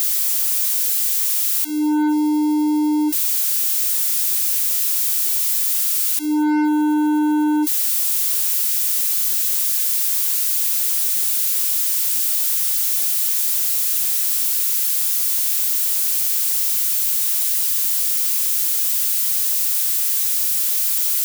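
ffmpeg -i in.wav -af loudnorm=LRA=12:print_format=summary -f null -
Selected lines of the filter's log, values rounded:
Input Integrated:    -16.3 LUFS
Input True Peak:     -11.0 dBTP
Input LRA:             0.8 LU
Input Threshold:     -26.3 LUFS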